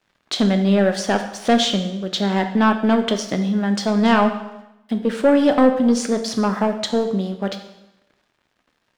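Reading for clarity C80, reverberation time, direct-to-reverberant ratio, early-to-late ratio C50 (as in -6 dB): 11.5 dB, 0.90 s, 6.0 dB, 9.0 dB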